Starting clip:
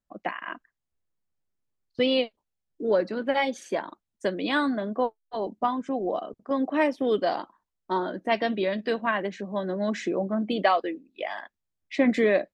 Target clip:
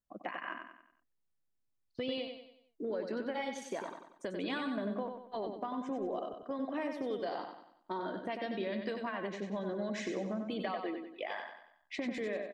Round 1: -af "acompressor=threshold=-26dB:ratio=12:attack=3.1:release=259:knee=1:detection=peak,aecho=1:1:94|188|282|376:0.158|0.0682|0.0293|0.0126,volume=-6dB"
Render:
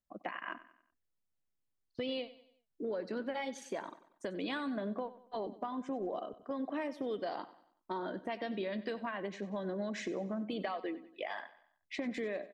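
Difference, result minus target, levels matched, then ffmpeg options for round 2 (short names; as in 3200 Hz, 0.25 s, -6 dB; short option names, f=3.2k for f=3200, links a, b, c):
echo-to-direct -10 dB
-af "acompressor=threshold=-26dB:ratio=12:attack=3.1:release=259:knee=1:detection=peak,aecho=1:1:94|188|282|376|470:0.501|0.216|0.0927|0.0398|0.0171,volume=-6dB"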